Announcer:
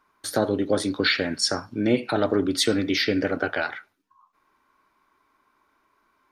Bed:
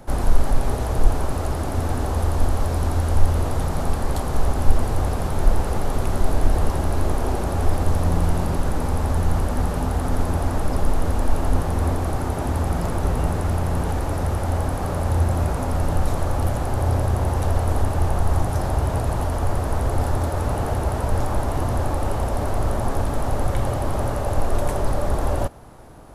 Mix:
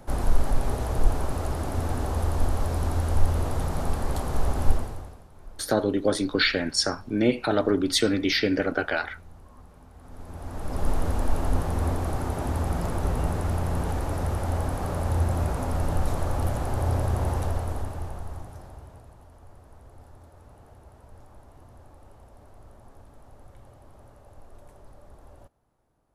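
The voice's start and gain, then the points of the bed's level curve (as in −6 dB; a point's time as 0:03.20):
5.35 s, −0.5 dB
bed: 0:04.71 −4.5 dB
0:05.27 −28 dB
0:09.91 −28 dB
0:10.88 −4.5 dB
0:17.33 −4.5 dB
0:19.17 −28 dB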